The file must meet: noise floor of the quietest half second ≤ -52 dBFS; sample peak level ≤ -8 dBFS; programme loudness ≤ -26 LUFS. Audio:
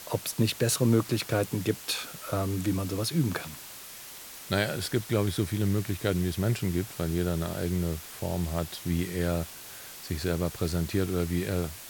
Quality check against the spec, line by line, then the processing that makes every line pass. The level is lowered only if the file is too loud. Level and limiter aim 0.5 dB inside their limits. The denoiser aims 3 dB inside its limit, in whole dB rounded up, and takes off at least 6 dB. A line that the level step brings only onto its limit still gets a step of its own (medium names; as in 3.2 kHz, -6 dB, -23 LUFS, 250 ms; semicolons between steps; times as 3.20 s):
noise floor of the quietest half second -44 dBFS: fail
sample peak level -10.0 dBFS: pass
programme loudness -29.5 LUFS: pass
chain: noise reduction 11 dB, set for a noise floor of -44 dBFS